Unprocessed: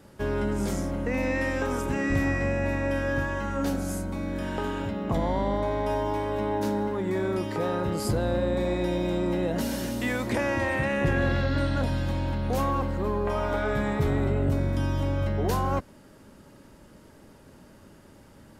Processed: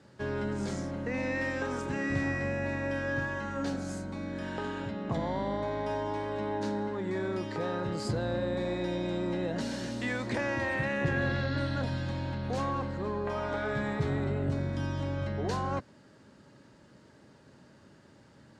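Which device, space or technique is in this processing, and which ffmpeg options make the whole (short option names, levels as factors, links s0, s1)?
car door speaker: -af "highpass=88,equalizer=f=130:t=q:w=4:g=5,equalizer=f=1700:t=q:w=4:g=4,equalizer=f=4200:t=q:w=4:g=5,lowpass=f=8000:w=0.5412,lowpass=f=8000:w=1.3066,volume=0.531"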